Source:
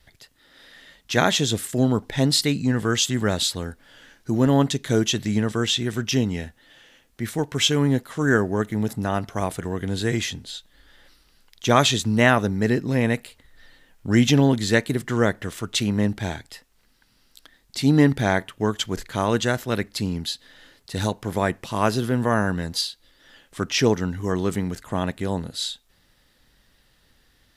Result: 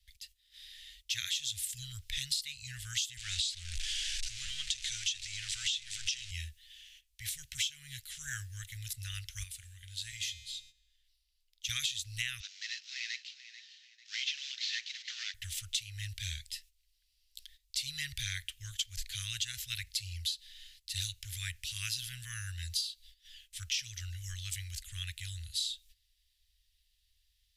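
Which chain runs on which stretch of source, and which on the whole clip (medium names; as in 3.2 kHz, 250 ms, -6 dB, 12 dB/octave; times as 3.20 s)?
3.17–6.31 s: jump at every zero crossing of -25.5 dBFS + low-pass 8.2 kHz 24 dB/octave + peaking EQ 130 Hz -14.5 dB 1.1 oct
9.43–11.69 s: peaking EQ 240 Hz -9 dB 1.4 oct + feedback comb 110 Hz, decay 1.5 s
12.40–15.34 s: CVSD coder 32 kbps + brick-wall FIR high-pass 500 Hz + echo whose repeats swap between lows and highs 220 ms, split 890 Hz, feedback 62%, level -10 dB
whole clip: gate -54 dBFS, range -12 dB; inverse Chebyshev band-stop 200–930 Hz, stop band 60 dB; compression 16:1, threshold -32 dBFS; trim +1 dB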